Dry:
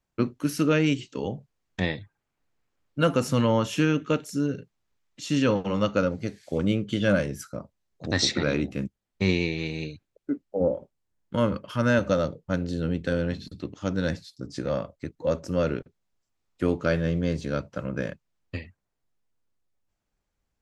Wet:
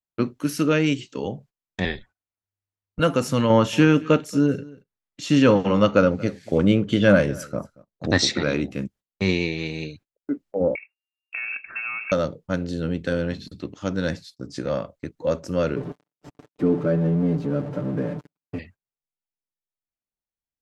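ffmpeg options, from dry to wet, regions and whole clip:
ffmpeg -i in.wav -filter_complex "[0:a]asettb=1/sr,asplit=3[link_01][link_02][link_03];[link_01]atrim=end=1.854[link_04];[link_02]atrim=start=1.85:end=3,asetpts=PTS-STARTPTS,afade=type=in:duration=0.004:curve=qsin,afade=type=out:start_time=1.146:duration=0.004:curve=qsin,lowpass=9700,afreqshift=-98[link_05];[link_03]atrim=start=2.996[link_06];[link_04][link_05]acrossfade=duration=0.004:curve1=hsin:curve2=qsin[link_07];[link_07][link_06]acrossfade=duration=0.004:curve1=qsin:curve2=hsin,asettb=1/sr,asplit=3[link_08][link_09][link_10];[link_08]atrim=end=3.504[link_11];[link_09]atrim=start=3.5:end=8.18,asetpts=PTS-STARTPTS,afade=type=in:duration=0.004:curve=qsin,afade=type=out:start_time=4.676:duration=0.004:curve=qsin,highshelf=frequency=4000:gain=-7.5,acontrast=32,aecho=1:1:230:0.0794,atrim=end_sample=206388[link_12];[link_10]atrim=start=8.176[link_13];[link_11][link_12]acrossfade=duration=0.004:curve1=hsin:curve2=qsin[link_14];[link_14][link_13]acrossfade=duration=0.004:curve1=qsin:curve2=hsin,asettb=1/sr,asplit=3[link_15][link_16][link_17];[link_15]atrim=end=10.754[link_18];[link_16]atrim=start=10.75:end=12.12,asetpts=PTS-STARTPTS,afade=type=in:duration=0.004:curve=qsin,afade=type=out:start_time=1.366:duration=0.004:curve=qsin,acompressor=threshold=-27dB:ratio=20:attack=3.2:release=140:knee=1:detection=peak,acrusher=bits=5:mode=log:mix=0:aa=0.000001,lowpass=frequency=2400:width_type=q:width=0.5098,lowpass=frequency=2400:width_type=q:width=0.6013,lowpass=frequency=2400:width_type=q:width=0.9,lowpass=frequency=2400:width_type=q:width=2.563,afreqshift=-2800[link_19];[link_17]atrim=start=12.116[link_20];[link_18][link_19]acrossfade=duration=0.004:curve1=hsin:curve2=qsin[link_21];[link_21][link_20]acrossfade=duration=0.004:curve1=qsin:curve2=hsin,asettb=1/sr,asplit=3[link_22][link_23][link_24];[link_22]atrim=end=15.764[link_25];[link_23]atrim=start=15.76:end=18.59,asetpts=PTS-STARTPTS,afade=type=in:duration=0.004:curve=qsin,afade=type=out:start_time=2.826:duration=0.004:curve=qsin,aeval=exprs='val(0)+0.5*0.0501*sgn(val(0))':channel_layout=same,bandpass=frequency=250:width_type=q:width=0.8,aecho=1:1:6.8:0.64,atrim=end_sample=124803[link_26];[link_24]atrim=start=18.586[link_27];[link_25][link_26]acrossfade=duration=0.004:curve1=hsin:curve2=qsin[link_28];[link_28][link_27]acrossfade=duration=0.004:curve1=qsin:curve2=hsin,agate=range=-20dB:threshold=-48dB:ratio=16:detection=peak,lowshelf=frequency=99:gain=-5.5,volume=2.5dB" out.wav

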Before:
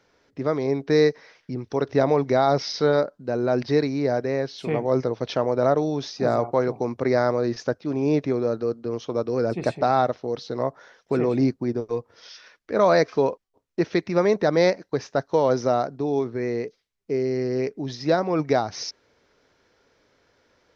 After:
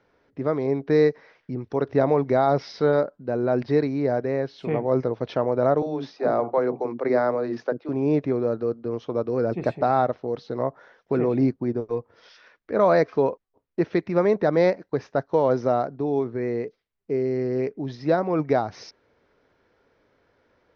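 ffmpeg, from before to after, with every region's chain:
ffmpeg -i in.wav -filter_complex "[0:a]asettb=1/sr,asplit=3[link_01][link_02][link_03];[link_01]atrim=end=5.824[link_04];[link_02]atrim=start=5.82:end=7.89,asetpts=PTS-STARTPTS,afade=type=in:duration=0.004:curve=qsin,afade=type=out:start_time=2.066:duration=0.004:curve=qsin,highpass=260,lowpass=5500,lowshelf=frequency=380:gain=4.5,acrossover=split=330[link_05][link_06];[link_05]adelay=40[link_07];[link_07][link_06]amix=inputs=2:normalize=0,atrim=end_sample=91287[link_08];[link_03]atrim=start=7.886[link_09];[link_04][link_08]acrossfade=duration=0.004:curve1=hsin:curve2=qsin[link_10];[link_10][link_09]acrossfade=duration=0.004:curve1=qsin:curve2=hsin,lowpass=frequency=2900:poles=1,aemphasis=mode=reproduction:type=50kf" out.wav

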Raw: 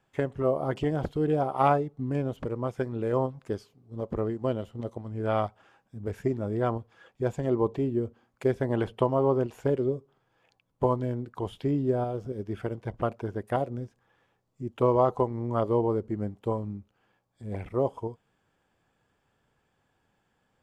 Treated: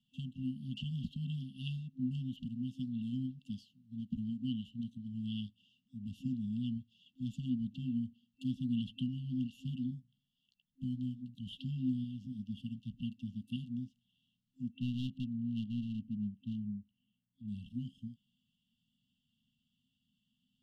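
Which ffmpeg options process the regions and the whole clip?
ffmpeg -i in.wav -filter_complex "[0:a]asettb=1/sr,asplit=3[link_01][link_02][link_03];[link_01]atrim=end=9.904[link_04];[link_02]atrim=start=9.9:end=11.35,asetpts=PTS-STARTPTS,afade=type=in:duration=0.004:curve=qsin,afade=type=out:start_time=1.446:duration=0.004:curve=qsin,equalizer=frequency=930:width_type=o:width=2.6:gain=-12.5,bandreject=frequency=60:width_type=h:width=6,bandreject=frequency=120:width_type=h:width=6,bandreject=frequency=180:width_type=h:width=6,bandreject=frequency=240:width_type=h:width=6,bandreject=frequency=300:width_type=h:width=6,bandreject=frequency=360:width_type=h:width=6,bandreject=frequency=420:width_type=h:width=6,bandreject=frequency=480:width_type=h:width=6,bandreject=frequency=540:width_type=h:width=6,asplit=2[link_05][link_06];[link_06]adelay=15,volume=-11dB[link_07];[link_05][link_07]amix=inputs=2:normalize=0,atrim=end_sample=63945[link_08];[link_03]atrim=start=11.346[link_09];[link_04][link_08]acrossfade=duration=0.004:curve1=hsin:curve2=qsin[link_10];[link_10][link_09]acrossfade=duration=0.004:curve1=qsin:curve2=hsin,asettb=1/sr,asplit=3[link_11][link_12][link_13];[link_11]atrim=end=14.714[link_14];[link_12]atrim=start=14.71:end=17.48,asetpts=PTS-STARTPTS,afade=type=in:duration=0.004:curve=qsin,afade=type=out:start_time=2.766:duration=0.004:curve=qsin,lowpass=2100,bandreject=frequency=156.8:width_type=h:width=4,bandreject=frequency=313.6:width_type=h:width=4,bandreject=frequency=470.4:width_type=h:width=4,bandreject=frequency=627.2:width_type=h:width=4,bandreject=frequency=784:width_type=h:width=4,bandreject=frequency=940.8:width_type=h:width=4,bandreject=frequency=1097.6:width_type=h:width=4,bandreject=frequency=1254.4:width_type=h:width=4,bandreject=frequency=1411.2:width_type=h:width=4,bandreject=frequency=1568:width_type=h:width=4,bandreject=frequency=1724.8:width_type=h:width=4,bandreject=frequency=1881.6:width_type=h:width=4,bandreject=frequency=2038.4:width_type=h:width=4,bandreject=frequency=2195.2:width_type=h:width=4,bandreject=frequency=2352:width_type=h:width=4,bandreject=frequency=2508.8:width_type=h:width=4,bandreject=frequency=2665.6:width_type=h:width=4,bandreject=frequency=2822.4:width_type=h:width=4,bandreject=frequency=2979.2:width_type=h:width=4,bandreject=frequency=3136:width_type=h:width=4,bandreject=frequency=3292.8:width_type=h:width=4,bandreject=frequency=3449.6:width_type=h:width=4,bandreject=frequency=3606.4:width_type=h:width=4,bandreject=frequency=3763.2:width_type=h:width=4,bandreject=frequency=3920:width_type=h:width=4,bandreject=frequency=4076.8:width_type=h:width=4,bandreject=frequency=4233.6:width_type=h:width=4,bandreject=frequency=4390.4:width_type=h:width=4,bandreject=frequency=4547.2:width_type=h:width=4,bandreject=frequency=4704:width_type=h:width=4,bandreject=frequency=4860.8:width_type=h:width=4,bandreject=frequency=5017.6:width_type=h:width=4,bandreject=frequency=5174.4:width_type=h:width=4,bandreject=frequency=5331.2:width_type=h:width=4,bandreject=frequency=5488:width_type=h:width=4,bandreject=frequency=5644.8:width_type=h:width=4,bandreject=frequency=5801.6:width_type=h:width=4,aeval=exprs='clip(val(0),-1,0.0355)':channel_layout=same[link_15];[link_13]atrim=start=17.476[link_16];[link_14][link_15]acrossfade=duration=0.004:curve1=hsin:curve2=qsin[link_17];[link_17][link_16]acrossfade=duration=0.004:curve1=qsin:curve2=hsin,equalizer=frequency=390:width_type=o:width=2.4:gain=-6.5,afftfilt=real='re*(1-between(b*sr/4096,260,2700))':imag='im*(1-between(b*sr/4096,260,2700))':win_size=4096:overlap=0.75,acrossover=split=220 2800:gain=0.0794 1 0.0794[link_18][link_19][link_20];[link_18][link_19][link_20]amix=inputs=3:normalize=0,volume=9dB" out.wav

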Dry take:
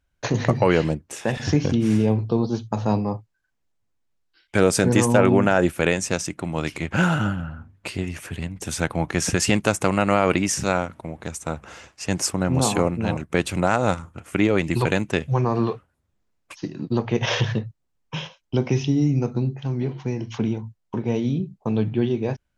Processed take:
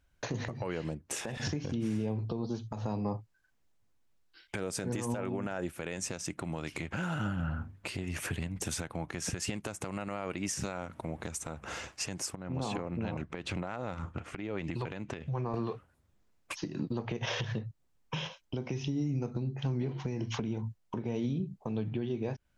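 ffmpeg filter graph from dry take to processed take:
ffmpeg -i in.wav -filter_complex "[0:a]asettb=1/sr,asplit=3[link_01][link_02][link_03];[link_01]atrim=end=12.354[link_04];[link_02]atrim=start=12.35:end=15.54,asetpts=PTS-STARTPTS,afade=type=in:duration=0.004:curve=qsin,afade=type=out:start_time=3.186:duration=0.004:curve=qsin,lowpass=4400,acompressor=threshold=-32dB:ratio=8:attack=3.2:release=140:knee=1:detection=peak[link_05];[link_03]atrim=start=15.536[link_06];[link_04][link_05]acrossfade=duration=0.004:curve1=hsin:curve2=qsin[link_07];[link_07][link_06]acrossfade=duration=0.004:curve1=qsin:curve2=hsin,acompressor=threshold=-29dB:ratio=6,alimiter=level_in=2dB:limit=-24dB:level=0:latency=1:release=218,volume=-2dB,volume=2dB" out.wav

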